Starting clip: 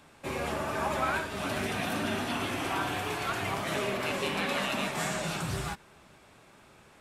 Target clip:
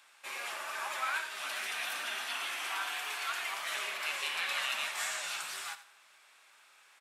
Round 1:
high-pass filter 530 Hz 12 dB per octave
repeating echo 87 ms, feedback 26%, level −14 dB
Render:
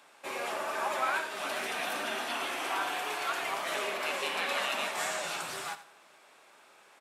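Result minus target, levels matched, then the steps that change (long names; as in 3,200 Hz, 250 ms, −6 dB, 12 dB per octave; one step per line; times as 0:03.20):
500 Hz band +10.5 dB
change: high-pass filter 1,400 Hz 12 dB per octave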